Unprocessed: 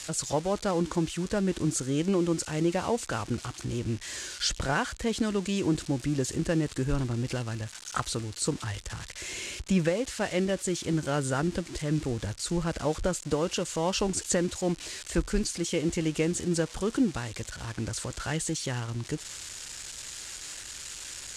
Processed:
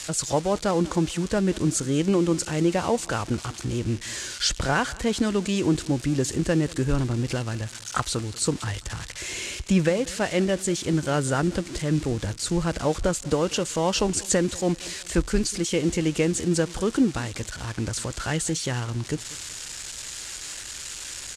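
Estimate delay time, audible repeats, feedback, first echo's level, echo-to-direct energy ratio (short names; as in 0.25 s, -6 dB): 0.19 s, 2, 38%, -21.5 dB, -21.0 dB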